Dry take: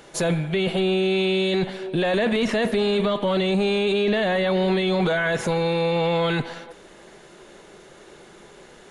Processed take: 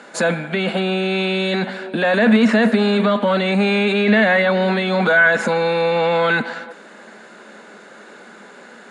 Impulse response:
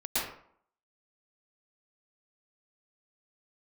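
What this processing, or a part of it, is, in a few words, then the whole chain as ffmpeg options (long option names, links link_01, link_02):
television speaker: -filter_complex "[0:a]asettb=1/sr,asplit=3[link_01][link_02][link_03];[link_01]atrim=end=3.464[link_04];[link_02]atrim=start=3.46:end=4.42,asetpts=PTS-STARTPTS,afade=type=in:duration=0.004:curve=qsin,afade=type=out:start_time=0.956:duration=0.004:curve=qsin,equalizer=frequency=2100:width_type=o:width=0.34:gain=8[link_05];[link_03]atrim=start=4.416[link_06];[link_04][link_05]acrossfade=duration=0.004:curve1=hsin:curve2=qsin[link_07];[link_07][link_06]acrossfade=duration=0.004:curve1=qsin:curve2=hsin,highpass=frequency=220:width=0.5412,highpass=frequency=220:width=1.3066,equalizer=frequency=220:width_type=q:width=4:gain=10,equalizer=frequency=360:width_type=q:width=4:gain=-9,equalizer=frequency=1500:width_type=q:width=4:gain=8,equalizer=frequency=3200:width_type=q:width=4:gain=-6,equalizer=frequency=5800:width_type=q:width=4:gain=-9,lowpass=frequency=8200:width=0.5412,lowpass=frequency=8200:width=1.3066,volume=6dB"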